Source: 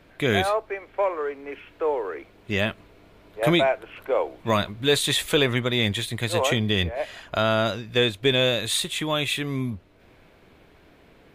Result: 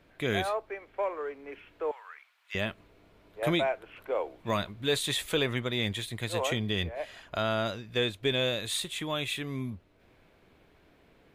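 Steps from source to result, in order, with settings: 1.91–2.55 HPF 1100 Hz 24 dB/oct; gain -7.5 dB

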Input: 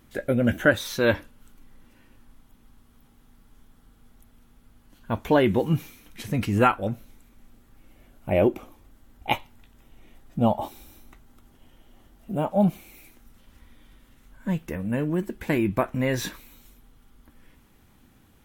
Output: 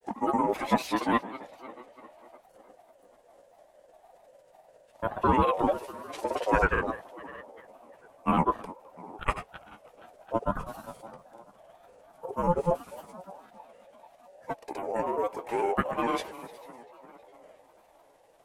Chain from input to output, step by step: ring modulator 820 Hz; on a send: tape echo 0.326 s, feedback 61%, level -16 dB, low-pass 4500 Hz; on the sum: grains, pitch spread up and down by 3 st; formant shift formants -4 st

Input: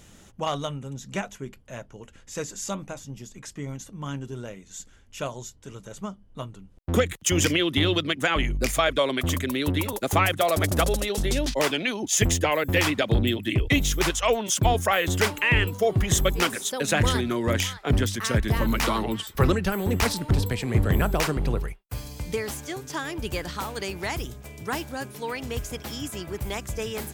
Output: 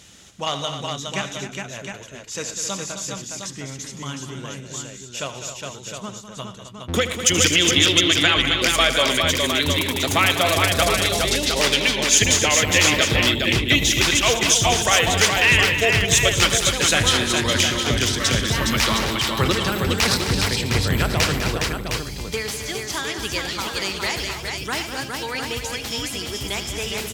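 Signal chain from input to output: HPF 55 Hz; bell 4200 Hz +11 dB 2.4 oct; on a send: tapped delay 76/114/200/262/413/710 ms -13.5/-15.5/-11/-10.5/-4.5/-7 dB; on the sum: gain -1 dB

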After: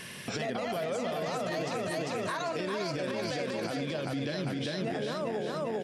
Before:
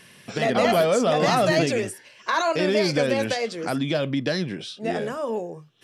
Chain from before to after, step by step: feedback echo 0.396 s, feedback 48%, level -3.5 dB; compressor 5:1, threshold -35 dBFS, peak gain reduction 18 dB; limiter -31 dBFS, peak gain reduction 8.5 dB; gain +6.5 dB

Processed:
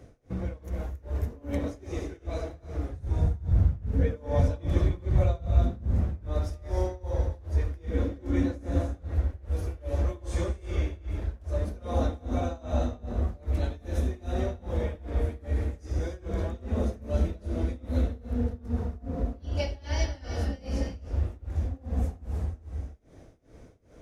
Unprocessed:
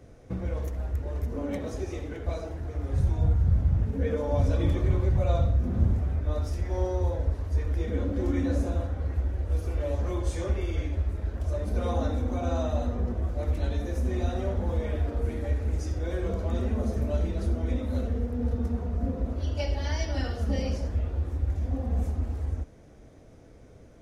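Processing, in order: non-linear reverb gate 0.34 s rising, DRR 5.5 dB; tremolo 2.5 Hz, depth 94%; gain +1.5 dB

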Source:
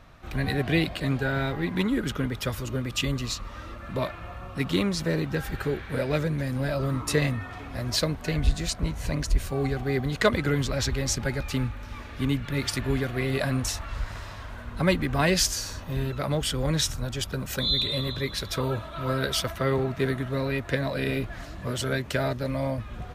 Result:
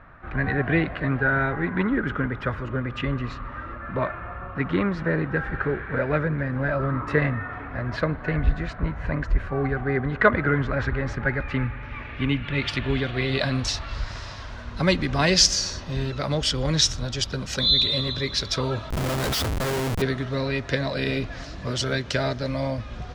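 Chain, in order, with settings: low-pass sweep 1600 Hz -> 5400 Hz, 11.08–14.17; spring tank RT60 3.1 s, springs 32/56 ms, chirp 20 ms, DRR 19 dB; 18.9–20.02 Schmitt trigger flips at -31 dBFS; gain +1.5 dB

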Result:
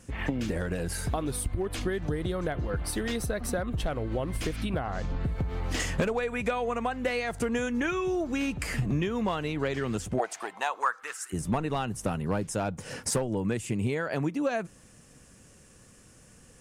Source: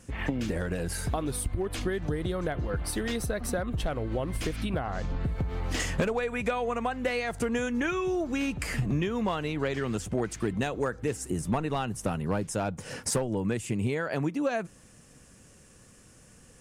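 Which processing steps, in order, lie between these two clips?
10.18–11.32 resonant high-pass 640 Hz -> 1500 Hz, resonance Q 4.6

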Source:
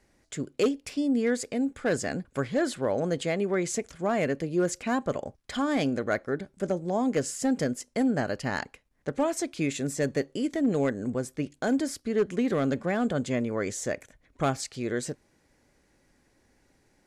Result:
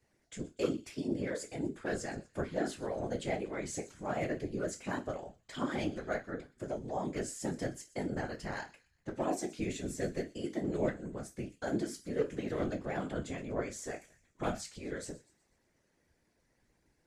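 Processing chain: resonator bank A2 major, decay 0.24 s; thin delay 0.122 s, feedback 44%, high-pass 2800 Hz, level -17.5 dB; whisperiser; gain +3.5 dB

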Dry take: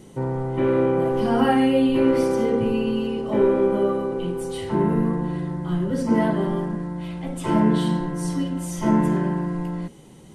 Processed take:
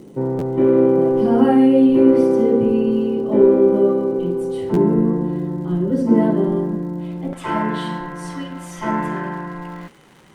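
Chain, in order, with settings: crackle 160/s -37 dBFS; bell 320 Hz +14.5 dB 2.6 oct, from 7.33 s 1500 Hz; stuck buffer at 0.38/4.73, samples 512, times 2; gain -7 dB

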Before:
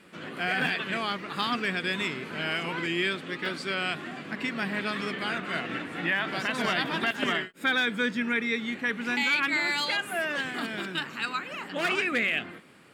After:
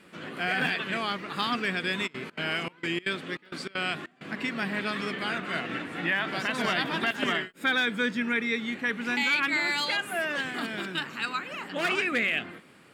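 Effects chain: 2.06–4.26 step gate ".xx.xxxx." 196 bpm -24 dB

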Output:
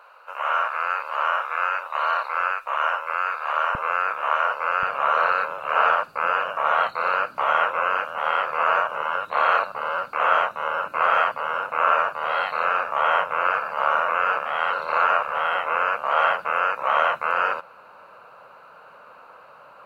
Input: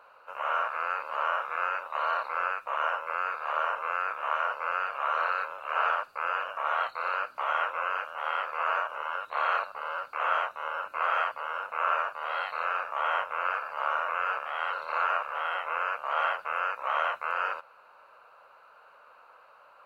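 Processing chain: bell 170 Hz -14.5 dB 2 oct, from 3.75 s +3 dB, from 4.83 s +14.5 dB; gain +7 dB

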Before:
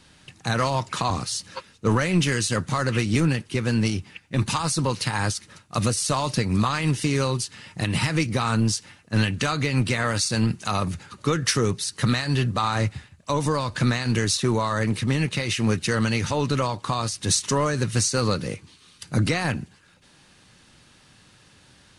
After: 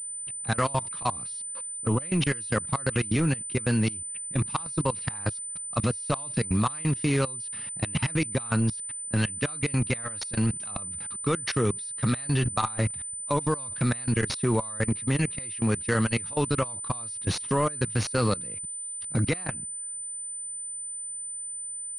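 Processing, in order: 1.33–2.02 envelope flanger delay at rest 9.1 ms, full sweep at -17 dBFS; level quantiser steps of 23 dB; pulse-width modulation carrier 9000 Hz

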